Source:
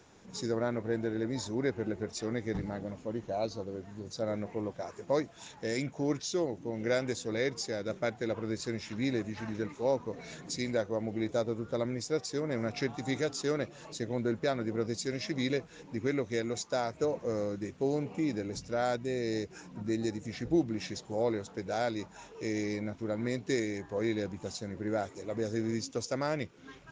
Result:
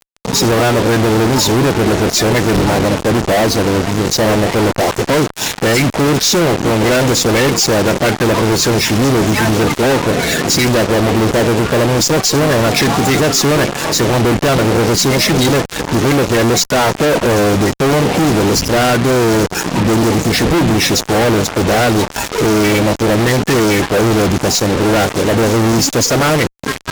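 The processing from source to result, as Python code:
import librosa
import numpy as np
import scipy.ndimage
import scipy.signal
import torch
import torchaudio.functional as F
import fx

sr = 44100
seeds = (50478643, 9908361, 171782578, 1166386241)

y = fx.spec_quant(x, sr, step_db=30)
y = fx.fuzz(y, sr, gain_db=56.0, gate_db=-49.0)
y = y * librosa.db_to_amplitude(3.0)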